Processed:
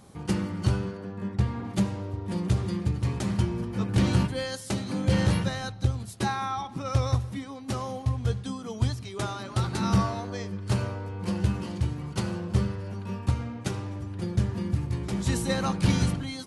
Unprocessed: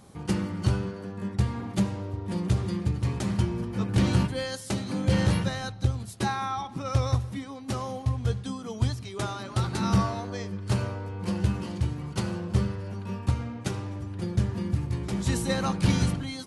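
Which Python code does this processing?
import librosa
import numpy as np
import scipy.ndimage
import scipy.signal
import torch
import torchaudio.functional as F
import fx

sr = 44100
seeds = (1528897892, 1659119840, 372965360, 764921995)

y = fx.high_shelf(x, sr, hz=5800.0, db=-10.5, at=(0.97, 1.65))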